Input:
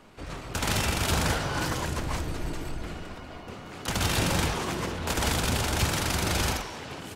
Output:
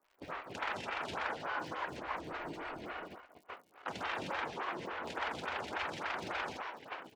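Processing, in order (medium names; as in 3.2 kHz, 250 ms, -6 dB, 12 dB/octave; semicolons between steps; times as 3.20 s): low-pass 2.1 kHz 12 dB/octave; gate -38 dBFS, range -26 dB; high-pass 1.2 kHz 6 dB/octave; compression 2.5:1, threshold -48 dBFS, peak gain reduction 11.5 dB; crackle 130 per s -60 dBFS; lamp-driven phase shifter 3.5 Hz; trim +10 dB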